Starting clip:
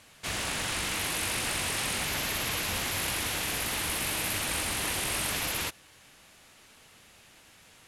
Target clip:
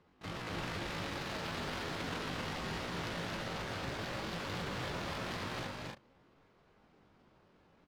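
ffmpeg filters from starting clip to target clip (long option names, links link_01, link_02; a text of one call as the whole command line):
ffmpeg -i in.wav -af "adynamicsmooth=sensitivity=1.5:basefreq=720,asetrate=78577,aresample=44100,atempo=0.561231,aecho=1:1:230.3|271.1:0.631|0.631,volume=-3.5dB" out.wav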